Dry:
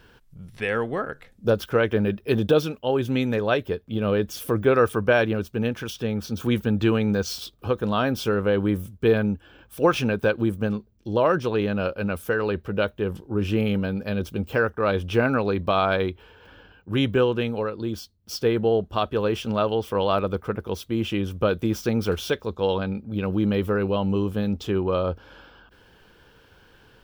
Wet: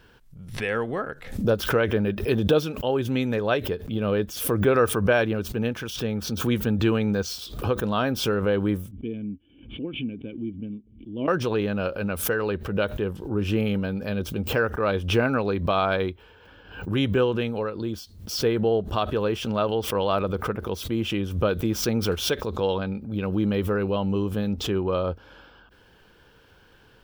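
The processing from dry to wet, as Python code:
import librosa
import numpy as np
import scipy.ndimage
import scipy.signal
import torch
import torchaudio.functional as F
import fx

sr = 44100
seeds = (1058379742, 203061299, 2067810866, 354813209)

y = fx.formant_cascade(x, sr, vowel='i', at=(8.91, 11.28))
y = fx.pre_swell(y, sr, db_per_s=91.0)
y = y * 10.0 ** (-1.5 / 20.0)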